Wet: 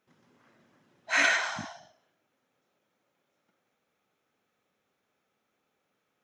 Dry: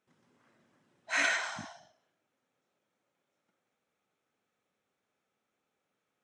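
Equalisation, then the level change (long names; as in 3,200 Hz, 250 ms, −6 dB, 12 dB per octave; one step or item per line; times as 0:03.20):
parametric band 8,400 Hz −12.5 dB 0.21 octaves
+5.0 dB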